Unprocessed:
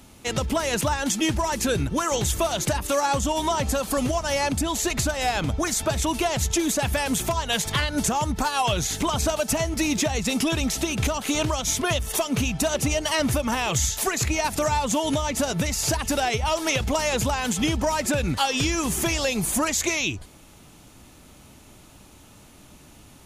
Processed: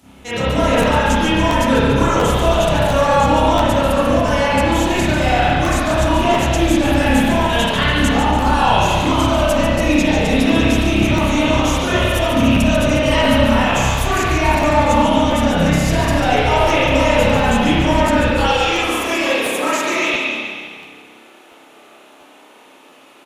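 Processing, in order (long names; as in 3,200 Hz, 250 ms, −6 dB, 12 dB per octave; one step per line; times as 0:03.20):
high-pass filter 59 Hz 24 dB per octave, from 0:18.26 350 Hz
echo with shifted repeats 143 ms, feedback 52%, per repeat −34 Hz, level −7.5 dB
convolution reverb RT60 1.7 s, pre-delay 30 ms, DRR −13 dB
regular buffer underruns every 0.69 s, samples 512, repeat, from 0:00.81
level −4 dB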